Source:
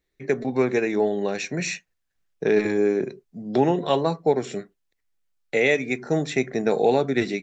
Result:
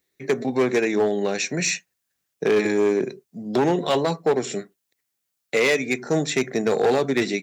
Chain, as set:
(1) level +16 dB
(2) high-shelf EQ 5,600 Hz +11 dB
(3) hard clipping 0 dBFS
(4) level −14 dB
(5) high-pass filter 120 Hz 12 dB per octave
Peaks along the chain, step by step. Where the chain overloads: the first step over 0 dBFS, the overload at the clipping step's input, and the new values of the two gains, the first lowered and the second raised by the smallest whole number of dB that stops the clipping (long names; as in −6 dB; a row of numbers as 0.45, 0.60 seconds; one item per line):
+8.5, +9.5, 0.0, −14.0, −10.0 dBFS
step 1, 9.5 dB
step 1 +6 dB, step 4 −4 dB